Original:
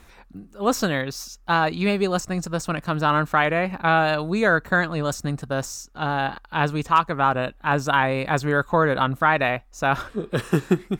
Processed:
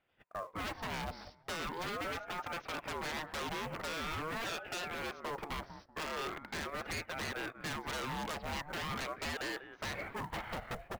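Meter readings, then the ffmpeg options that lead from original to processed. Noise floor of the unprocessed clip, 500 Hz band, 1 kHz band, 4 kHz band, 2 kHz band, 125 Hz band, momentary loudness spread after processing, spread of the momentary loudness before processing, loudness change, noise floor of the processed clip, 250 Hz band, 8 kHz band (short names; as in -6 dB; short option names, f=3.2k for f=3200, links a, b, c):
-51 dBFS, -19.0 dB, -18.5 dB, -9.0 dB, -16.5 dB, -21.0 dB, 4 LU, 7 LU, -17.5 dB, -63 dBFS, -20.0 dB, -12.0 dB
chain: -filter_complex "[0:a]aemphasis=mode=reproduction:type=75kf,agate=range=-29dB:threshold=-45dB:ratio=16:detection=peak,acrossover=split=230 3000:gain=0.0891 1 0.251[a][b][c];[a][b][c]amix=inputs=3:normalize=0,acompressor=threshold=-37dB:ratio=4,aresample=11025,asoftclip=type=tanh:threshold=-28.5dB,aresample=44100,acrusher=bits=6:mode=log:mix=0:aa=0.000001,asplit=2[d][e];[e]adelay=191,lowpass=f=1.3k:p=1,volume=-17.5dB,asplit=2[f][g];[g]adelay=191,lowpass=f=1.3k:p=1,volume=0.26[h];[f][h]amix=inputs=2:normalize=0[i];[d][i]amix=inputs=2:normalize=0,aeval=exprs='0.01*(abs(mod(val(0)/0.01+3,4)-2)-1)':c=same,aeval=exprs='val(0)*sin(2*PI*690*n/s+690*0.55/0.42*sin(2*PI*0.42*n/s))':c=same,volume=9.5dB"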